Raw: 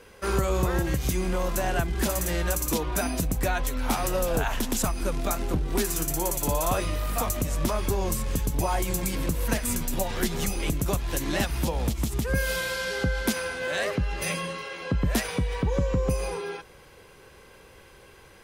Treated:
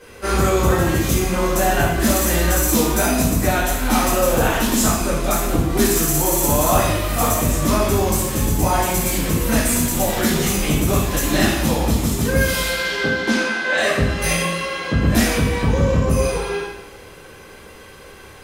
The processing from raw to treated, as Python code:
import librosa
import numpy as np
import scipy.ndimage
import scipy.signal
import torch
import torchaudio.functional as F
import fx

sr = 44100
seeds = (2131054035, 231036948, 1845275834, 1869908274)

p1 = np.clip(x, -10.0 ** (-23.0 / 20.0), 10.0 ** (-23.0 / 20.0))
p2 = x + F.gain(torch.from_numpy(p1), -6.0).numpy()
p3 = fx.bandpass_edges(p2, sr, low_hz=fx.line((12.68, 150.0), (13.76, 310.0)), high_hz=4900.0, at=(12.68, 13.76), fade=0.02)
p4 = fx.rev_double_slope(p3, sr, seeds[0], early_s=0.86, late_s=2.3, knee_db=-23, drr_db=-9.0)
y = F.gain(torch.from_numpy(p4), -2.5).numpy()